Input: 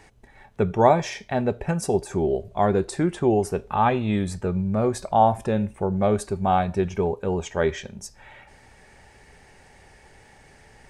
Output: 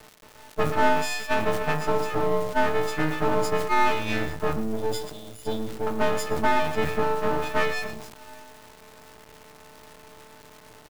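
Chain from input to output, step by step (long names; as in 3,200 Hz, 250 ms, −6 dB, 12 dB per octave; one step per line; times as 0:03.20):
every partial snapped to a pitch grid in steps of 6 semitones
parametric band 1,100 Hz +13 dB 3 octaves
low-pass that shuts in the quiet parts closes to 410 Hz, open at −5.5 dBFS
downward compressor 3 to 1, threshold −19 dBFS, peak gain reduction 16.5 dB
0:04.59–0:05.87: linear-phase brick-wall band-stop 590–3,100 Hz
half-wave rectification
bit reduction 8 bits
single-tap delay 116 ms −15.5 dB
surface crackle 220 per second −38 dBFS
level that may fall only so fast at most 63 dB per second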